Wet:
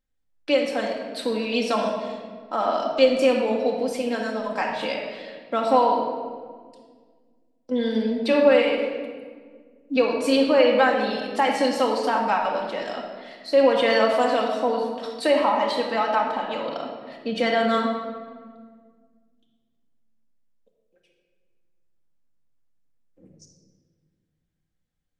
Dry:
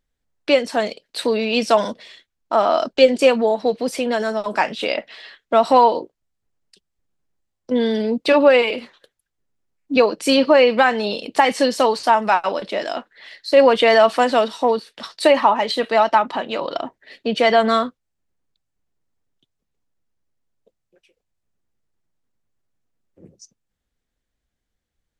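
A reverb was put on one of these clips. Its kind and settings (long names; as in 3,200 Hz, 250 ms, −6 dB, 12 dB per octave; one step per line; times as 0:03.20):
rectangular room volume 2,200 cubic metres, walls mixed, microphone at 2.1 metres
level −8.5 dB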